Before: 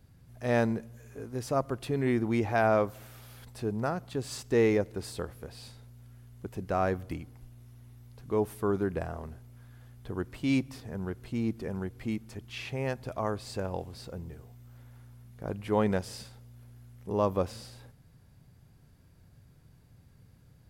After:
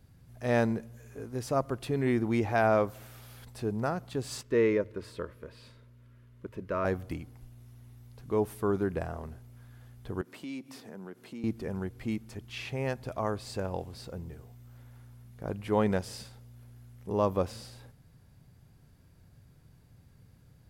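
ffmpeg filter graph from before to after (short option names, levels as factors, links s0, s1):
-filter_complex "[0:a]asettb=1/sr,asplit=3[s0][s1][s2];[s0]atrim=end=4.414[s3];[s1]atrim=start=4.41:end=6.85,asetpts=PTS-STARTPTS,afade=t=in:d=0.004:c=qsin,afade=t=out:st=2.436:d=0.004:c=qsin,asuperstop=centerf=770:order=8:qfactor=3.3,bass=f=250:g=-5,treble=f=4000:g=-13,bandreject=f=50:t=h:w=6,bandreject=f=100:t=h:w=6[s4];[s2]atrim=start=6.846[s5];[s3][s4]acrossfade=d=0.004:c1=hsin:c2=qsin[s6];[s6][s5]acrossfade=d=0.004:c1=qsin:c2=hsin,asettb=1/sr,asplit=3[s7][s8][s9];[s7]atrim=end=10.214[s10];[s8]atrim=start=10.21:end=11.44,asetpts=PTS-STARTPTS,afade=t=in:d=0.004:c=qsin,afade=t=out:st=1.226:d=0.004:c=qsin,highpass=f=180:w=0.5412,highpass=f=180:w=1.3066,acompressor=threshold=0.00794:ratio=2.5:attack=3.2:release=140:knee=1:detection=peak[s11];[s9]atrim=start=11.436[s12];[s10][s11]acrossfade=d=0.004:c1=hsin:c2=qsin[s13];[s13][s12]acrossfade=d=0.004:c1=qsin:c2=hsin"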